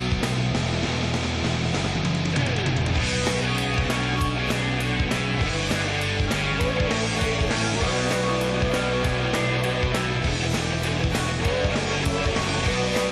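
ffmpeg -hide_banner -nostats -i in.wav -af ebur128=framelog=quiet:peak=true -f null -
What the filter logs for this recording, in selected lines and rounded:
Integrated loudness:
  I:         -23.6 LUFS
  Threshold: -33.6 LUFS
Loudness range:
  LRA:         0.7 LU
  Threshold: -43.5 LUFS
  LRA low:   -23.8 LUFS
  LRA high:  -23.1 LUFS
True peak:
  Peak:      -12.6 dBFS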